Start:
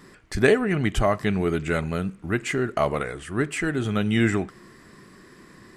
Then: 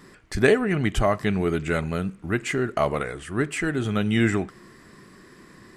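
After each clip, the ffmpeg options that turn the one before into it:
ffmpeg -i in.wav -af anull out.wav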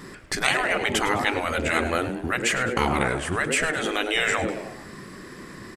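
ffmpeg -i in.wav -filter_complex "[0:a]asplit=5[link_01][link_02][link_03][link_04][link_05];[link_02]adelay=104,afreqshift=110,volume=-14dB[link_06];[link_03]adelay=208,afreqshift=220,volume=-20.6dB[link_07];[link_04]adelay=312,afreqshift=330,volume=-27.1dB[link_08];[link_05]adelay=416,afreqshift=440,volume=-33.7dB[link_09];[link_01][link_06][link_07][link_08][link_09]amix=inputs=5:normalize=0,afftfilt=real='re*lt(hypot(re,im),0.2)':imag='im*lt(hypot(re,im),0.2)':win_size=1024:overlap=0.75,volume=8dB" out.wav

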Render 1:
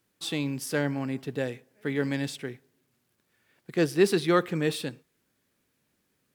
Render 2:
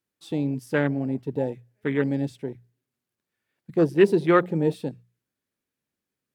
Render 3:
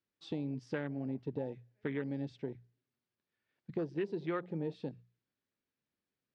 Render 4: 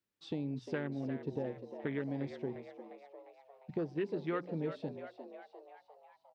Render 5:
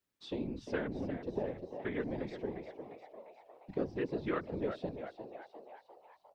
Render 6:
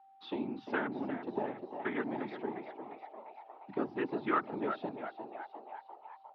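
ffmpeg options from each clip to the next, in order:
ffmpeg -i in.wav -af "afwtdn=0.0251,bandreject=frequency=60:width_type=h:width=6,bandreject=frequency=120:width_type=h:width=6,bandreject=frequency=180:width_type=h:width=6,volume=4.5dB" out.wav
ffmpeg -i in.wav -af "lowpass=frequency=5400:width=0.5412,lowpass=frequency=5400:width=1.3066,acompressor=threshold=-29dB:ratio=6,volume=-5dB" out.wav
ffmpeg -i in.wav -filter_complex "[0:a]asplit=7[link_01][link_02][link_03][link_04][link_05][link_06][link_07];[link_02]adelay=352,afreqshift=95,volume=-10.5dB[link_08];[link_03]adelay=704,afreqshift=190,volume=-15.5dB[link_09];[link_04]adelay=1056,afreqshift=285,volume=-20.6dB[link_10];[link_05]adelay=1408,afreqshift=380,volume=-25.6dB[link_11];[link_06]adelay=1760,afreqshift=475,volume=-30.6dB[link_12];[link_07]adelay=2112,afreqshift=570,volume=-35.7dB[link_13];[link_01][link_08][link_09][link_10][link_11][link_12][link_13]amix=inputs=7:normalize=0" out.wav
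ffmpeg -i in.wav -filter_complex "[0:a]acrossover=split=290[link_01][link_02];[link_01]alimiter=level_in=16.5dB:limit=-24dB:level=0:latency=1,volume=-16.5dB[link_03];[link_03][link_02]amix=inputs=2:normalize=0,afftfilt=real='hypot(re,im)*cos(2*PI*random(0))':imag='hypot(re,im)*sin(2*PI*random(1))':win_size=512:overlap=0.75,volume=8dB" out.wav
ffmpeg -i in.wav -af "aeval=exprs='val(0)+0.000562*sin(2*PI*780*n/s)':channel_layout=same,highpass=frequency=160:width=0.5412,highpass=frequency=160:width=1.3066,equalizer=frequency=170:width_type=q:width=4:gain=-8,equalizer=frequency=510:width_type=q:width=4:gain=-10,equalizer=frequency=880:width_type=q:width=4:gain=9,equalizer=frequency=1300:width_type=q:width=4:gain=8,lowpass=frequency=3700:width=0.5412,lowpass=frequency=3700:width=1.3066,volume=3dB" out.wav

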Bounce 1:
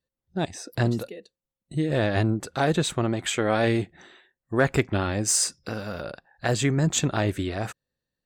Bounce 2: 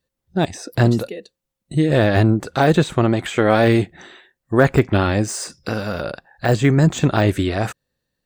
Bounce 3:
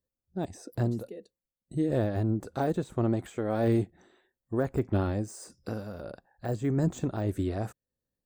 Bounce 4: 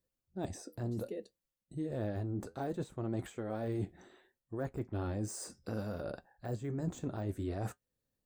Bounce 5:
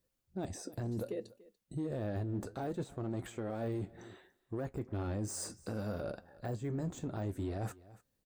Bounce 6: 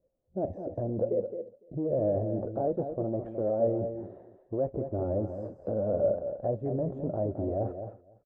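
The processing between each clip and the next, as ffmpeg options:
ffmpeg -i in.wav -af "deesser=0.95,volume=8.5dB" out.wav
ffmpeg -i in.wav -af "equalizer=frequency=150:width=5.7:gain=-7,tremolo=f=1.6:d=0.44,equalizer=frequency=2700:width=0.47:gain=-13.5,volume=-8dB" out.wav
ffmpeg -i in.wav -af "areverse,acompressor=threshold=-37dB:ratio=5,areverse,flanger=delay=6:depth=5.5:regen=-66:speed=0.64:shape=sinusoidal,volume=6dB" out.wav
ffmpeg -i in.wav -filter_complex "[0:a]asplit=2[link_01][link_02];[link_02]volume=34dB,asoftclip=hard,volume=-34dB,volume=-3dB[link_03];[link_01][link_03]amix=inputs=2:normalize=0,aecho=1:1:289:0.0668,alimiter=level_in=6.5dB:limit=-24dB:level=0:latency=1:release=241,volume=-6.5dB" out.wav
ffmpeg -i in.wav -filter_complex "[0:a]lowpass=frequency=590:width_type=q:width=4.9,asplit=2[link_01][link_02];[link_02]aecho=0:1:216:0.376[link_03];[link_01][link_03]amix=inputs=2:normalize=0,volume=2.5dB" out.wav

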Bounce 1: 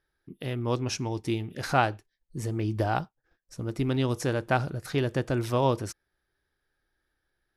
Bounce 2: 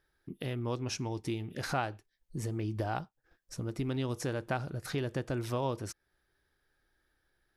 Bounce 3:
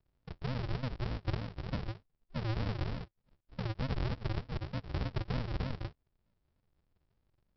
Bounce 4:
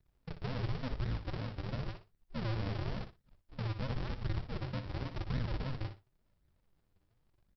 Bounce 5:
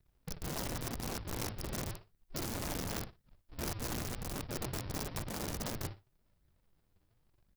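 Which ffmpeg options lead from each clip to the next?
ffmpeg -i in.wav -af "acompressor=threshold=-41dB:ratio=2,volume=2.5dB" out.wav
ffmpeg -i in.wav -af "alimiter=level_in=2dB:limit=-24dB:level=0:latency=1:release=18,volume=-2dB,aresample=11025,acrusher=samples=39:mix=1:aa=0.000001:lfo=1:lforange=23.4:lforate=3.3,aresample=44100" out.wav
ffmpeg -i in.wav -af "alimiter=level_in=8dB:limit=-24dB:level=0:latency=1:release=68,volume=-8dB,flanger=delay=0.5:depth=9.7:regen=33:speed=0.93:shape=sinusoidal,aecho=1:1:60|120:0.316|0.0538,volume=5.5dB" out.wav
ffmpeg -i in.wav -af "aeval=exprs='(mod(56.2*val(0)+1,2)-1)/56.2':channel_layout=same,crystalizer=i=0.5:c=0,volume=1dB" out.wav

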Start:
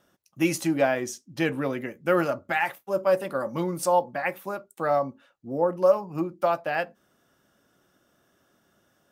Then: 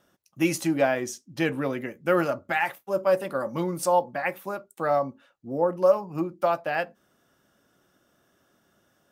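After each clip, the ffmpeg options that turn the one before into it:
ffmpeg -i in.wav -af anull out.wav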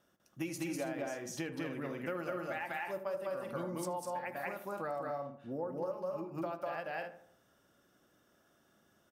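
ffmpeg -i in.wav -filter_complex "[0:a]asplit=2[link_01][link_02];[link_02]aecho=0:1:198.3|247.8:0.891|0.398[link_03];[link_01][link_03]amix=inputs=2:normalize=0,acompressor=threshold=-29dB:ratio=6,asplit=2[link_04][link_05];[link_05]adelay=78,lowpass=frequency=2000:poles=1,volume=-12dB,asplit=2[link_06][link_07];[link_07]adelay=78,lowpass=frequency=2000:poles=1,volume=0.49,asplit=2[link_08][link_09];[link_09]adelay=78,lowpass=frequency=2000:poles=1,volume=0.49,asplit=2[link_10][link_11];[link_11]adelay=78,lowpass=frequency=2000:poles=1,volume=0.49,asplit=2[link_12][link_13];[link_13]adelay=78,lowpass=frequency=2000:poles=1,volume=0.49[link_14];[link_06][link_08][link_10][link_12][link_14]amix=inputs=5:normalize=0[link_15];[link_04][link_15]amix=inputs=2:normalize=0,volume=-7dB" out.wav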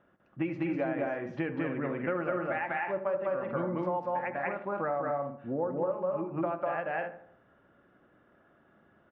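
ffmpeg -i in.wav -af "lowpass=frequency=2300:width=0.5412,lowpass=frequency=2300:width=1.3066,volume=7dB" out.wav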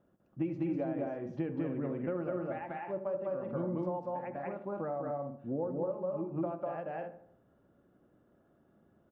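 ffmpeg -i in.wav -af "equalizer=frequency=1900:width=0.57:gain=-15" out.wav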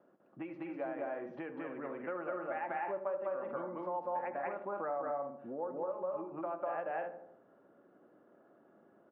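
ffmpeg -i in.wav -filter_complex "[0:a]acrossover=split=870[link_01][link_02];[link_01]acompressor=threshold=-46dB:ratio=5[link_03];[link_03][link_02]amix=inputs=2:normalize=0,highpass=330,lowpass=2000,volume=7dB" out.wav

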